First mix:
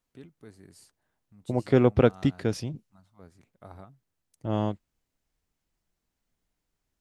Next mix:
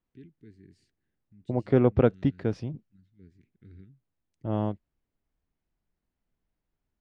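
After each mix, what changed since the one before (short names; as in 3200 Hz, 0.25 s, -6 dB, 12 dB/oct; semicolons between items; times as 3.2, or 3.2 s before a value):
first voice: add inverse Chebyshev band-stop 560–1200 Hz, stop band 40 dB; master: add tape spacing loss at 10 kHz 26 dB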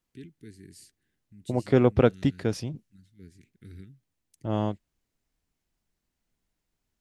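first voice +4.0 dB; master: remove tape spacing loss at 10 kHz 26 dB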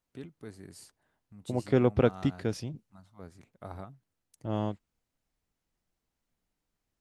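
first voice: remove inverse Chebyshev band-stop 560–1200 Hz, stop band 40 dB; second voice -4.0 dB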